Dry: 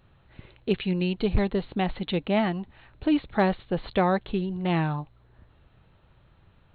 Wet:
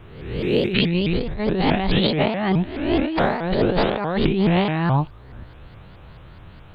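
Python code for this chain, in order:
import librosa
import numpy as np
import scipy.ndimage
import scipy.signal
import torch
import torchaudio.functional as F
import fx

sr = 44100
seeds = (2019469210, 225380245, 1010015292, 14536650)

y = fx.spec_swells(x, sr, rise_s=0.88)
y = fx.over_compress(y, sr, threshold_db=-29.0, ratio=-1.0)
y = fx.vibrato_shape(y, sr, shape='saw_up', rate_hz=4.7, depth_cents=250.0)
y = F.gain(torch.from_numpy(y), 8.5).numpy()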